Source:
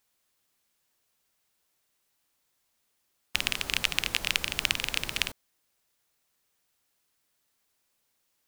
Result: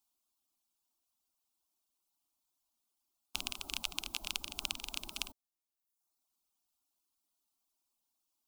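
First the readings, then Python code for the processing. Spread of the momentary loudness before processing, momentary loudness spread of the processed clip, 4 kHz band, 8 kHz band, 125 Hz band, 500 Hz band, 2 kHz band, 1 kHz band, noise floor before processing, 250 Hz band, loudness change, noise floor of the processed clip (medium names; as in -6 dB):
4 LU, 4 LU, -10.0 dB, -7.5 dB, -15.0 dB, -13.5 dB, -15.0 dB, -9.5 dB, -76 dBFS, -9.5 dB, -11.0 dB, under -85 dBFS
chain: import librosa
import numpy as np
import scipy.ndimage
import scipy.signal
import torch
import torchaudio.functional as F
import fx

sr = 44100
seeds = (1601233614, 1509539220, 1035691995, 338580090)

y = fx.dereverb_blind(x, sr, rt60_s=0.95)
y = fx.fixed_phaser(y, sr, hz=490.0, stages=6)
y = y * librosa.db_to_amplitude(-5.5)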